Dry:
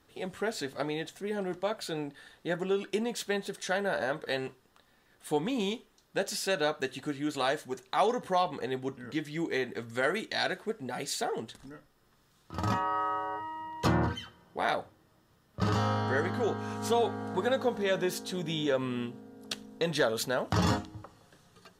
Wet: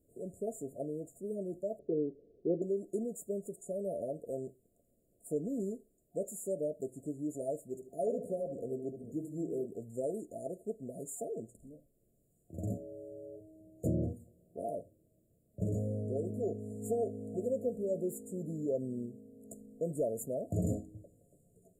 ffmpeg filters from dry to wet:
ffmpeg -i in.wav -filter_complex "[0:a]asettb=1/sr,asplit=3[link_01][link_02][link_03];[link_01]atrim=end=1.794[link_04];[link_02]atrim=start=1.79:end=2.62,asetpts=PTS-STARTPTS,afade=type=in:duration=0.004:curve=qsin,afade=type=out:start_time=0.826:duration=0.004:curve=qsin,lowpass=frequency=410:width_type=q:width=5.1[link_05];[link_03]atrim=start=2.616[link_06];[link_04][link_05]acrossfade=duration=0.004:curve1=hsin:curve2=qsin[link_07];[link_07][link_06]acrossfade=duration=0.004:curve1=qsin:curve2=hsin,asettb=1/sr,asplit=3[link_08][link_09][link_10];[link_08]atrim=end=7.624[link_11];[link_09]atrim=start=7.62:end=9.66,asetpts=PTS-STARTPTS,afade=type=in:duration=0.004:curve=qsin,afade=type=out:start_time=2.036:duration=0.004:curve=qsin,asplit=2[link_12][link_13];[link_13]adelay=74,lowpass=frequency=2000:poles=1,volume=-8dB,asplit=2[link_14][link_15];[link_15]adelay=74,lowpass=frequency=2000:poles=1,volume=0.48,asplit=2[link_16][link_17];[link_17]adelay=74,lowpass=frequency=2000:poles=1,volume=0.48,asplit=2[link_18][link_19];[link_19]adelay=74,lowpass=frequency=2000:poles=1,volume=0.48,asplit=2[link_20][link_21];[link_21]adelay=74,lowpass=frequency=2000:poles=1,volume=0.48,asplit=2[link_22][link_23];[link_23]adelay=74,lowpass=frequency=2000:poles=1,volume=0.48[link_24];[link_12][link_14][link_16][link_18][link_20][link_22][link_24]amix=inputs=7:normalize=0,atrim=end_sample=89964[link_25];[link_10]atrim=start=9.656[link_26];[link_11][link_25]acrossfade=duration=0.004:curve1=hsin:curve2=qsin[link_27];[link_27][link_26]acrossfade=duration=0.004:curve1=qsin:curve2=hsin,afftfilt=real='re*(1-between(b*sr/4096,710,6800))':imag='im*(1-between(b*sr/4096,710,6800))':win_size=4096:overlap=0.75,volume=-4.5dB" out.wav

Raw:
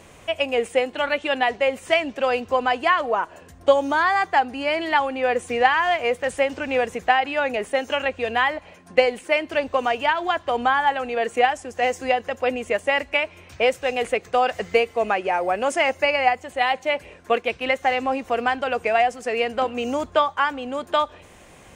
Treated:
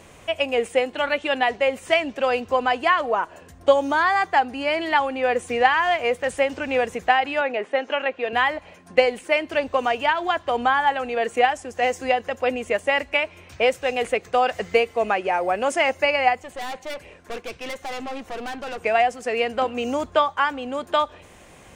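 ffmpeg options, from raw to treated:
ffmpeg -i in.wav -filter_complex "[0:a]asettb=1/sr,asplit=3[link_01][link_02][link_03];[link_01]atrim=end=7.414[link_04];[link_02]atrim=start=7.41:end=8.33,asetpts=PTS-STARTPTS,afade=type=in:duration=0.004:curve=qsin,afade=type=out:start_time=0.916:duration=0.004:curve=qsin,highpass=260,lowpass=3200[link_05];[link_03]atrim=start=8.326[link_06];[link_04][link_05]acrossfade=duration=0.004:curve1=hsin:curve2=qsin[link_07];[link_07][link_06]acrossfade=duration=0.004:curve1=qsin:curve2=hsin,asettb=1/sr,asplit=3[link_08][link_09][link_10];[link_08]atrim=end=16.424[link_11];[link_09]atrim=start=16.42:end=18.82,asetpts=PTS-STARTPTS,afade=type=in:duration=0.004:curve=qsin,afade=type=out:start_time=2.396:duration=0.004:curve=qsin,aeval=exprs='(tanh(28.2*val(0)+0.4)-tanh(0.4))/28.2':channel_layout=same[link_12];[link_10]atrim=start=18.816[link_13];[link_11][link_12]acrossfade=duration=0.004:curve1=hsin:curve2=qsin[link_14];[link_14][link_13]acrossfade=duration=0.004:curve1=qsin:curve2=hsin" out.wav

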